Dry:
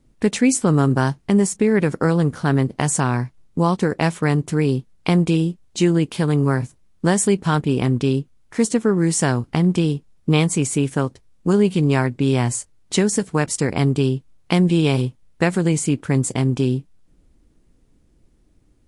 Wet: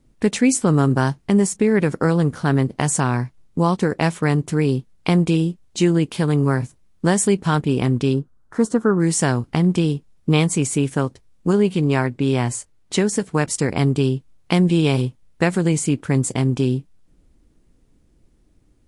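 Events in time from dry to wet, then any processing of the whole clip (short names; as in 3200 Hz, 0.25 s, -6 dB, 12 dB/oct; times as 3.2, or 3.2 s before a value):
8.14–9 resonant high shelf 1800 Hz -8 dB, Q 3
11.51–13.34 tone controls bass -2 dB, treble -3 dB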